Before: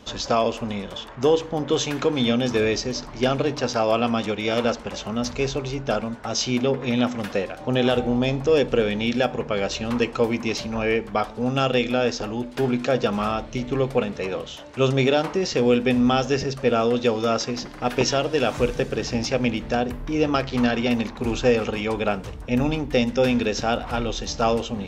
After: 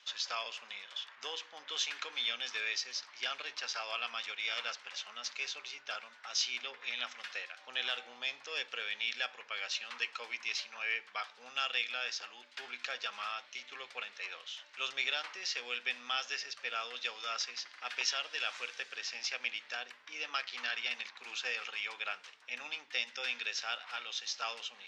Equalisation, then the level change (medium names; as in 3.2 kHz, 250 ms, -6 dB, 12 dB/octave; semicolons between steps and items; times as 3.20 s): Butterworth band-pass 3.1 kHz, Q 0.72; -5.5 dB